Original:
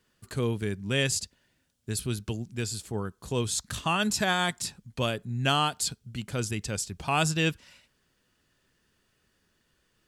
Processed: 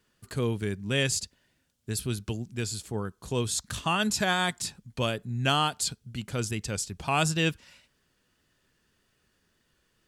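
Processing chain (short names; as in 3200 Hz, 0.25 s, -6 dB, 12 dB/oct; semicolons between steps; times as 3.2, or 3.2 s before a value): wow and flutter 27 cents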